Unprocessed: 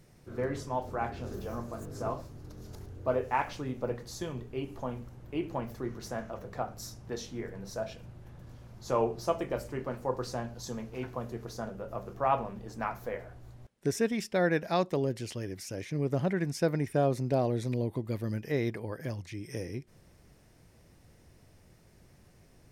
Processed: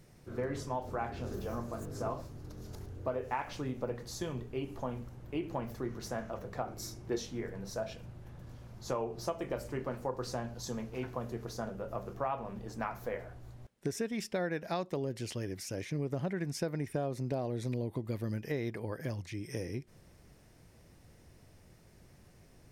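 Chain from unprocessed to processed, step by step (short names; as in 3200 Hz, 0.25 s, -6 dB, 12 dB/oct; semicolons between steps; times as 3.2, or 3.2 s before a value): compressor 6:1, threshold -31 dBFS, peak gain reduction 9.5 dB; 6.65–7.17 small resonant body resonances 350/2200 Hz, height 13 dB -> 9 dB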